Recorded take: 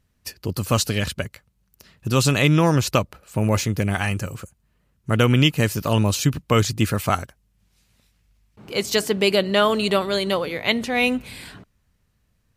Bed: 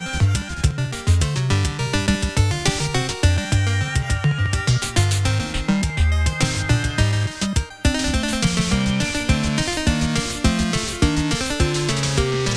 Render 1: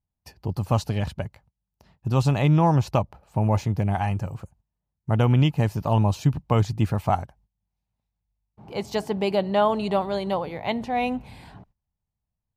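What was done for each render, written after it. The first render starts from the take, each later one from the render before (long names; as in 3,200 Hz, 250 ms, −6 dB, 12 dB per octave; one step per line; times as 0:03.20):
noise gate −53 dBFS, range −17 dB
drawn EQ curve 150 Hz 0 dB, 260 Hz −5 dB, 510 Hz −6 dB, 830 Hz +6 dB, 1,300 Hz −10 dB, 5,500 Hz −14 dB, 7,900 Hz −18 dB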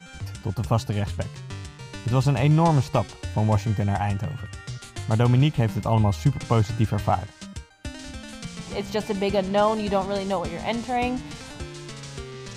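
mix in bed −17 dB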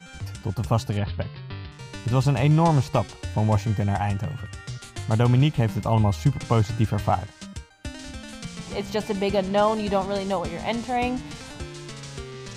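0:00.97–0:01.72: Butterworth low-pass 4,900 Hz 96 dB per octave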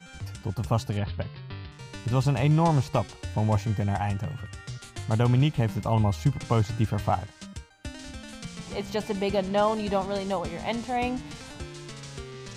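level −3 dB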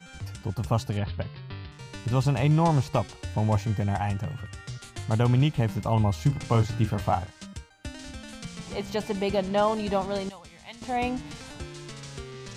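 0:06.13–0:07.30: double-tracking delay 34 ms −9.5 dB
0:10.29–0:10.82: guitar amp tone stack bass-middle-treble 5-5-5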